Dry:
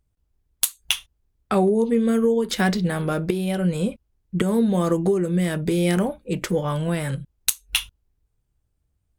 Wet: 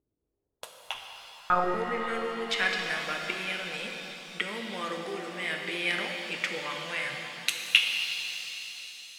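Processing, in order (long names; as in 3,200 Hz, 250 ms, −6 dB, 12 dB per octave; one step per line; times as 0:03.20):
band-pass filter sweep 350 Hz → 2,400 Hz, 0:00.10–0:02.26
0:00.94–0:01.74: one-pitch LPC vocoder at 8 kHz 180 Hz
reverb with rising layers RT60 3.6 s, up +7 semitones, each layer −8 dB, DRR 2 dB
level +5 dB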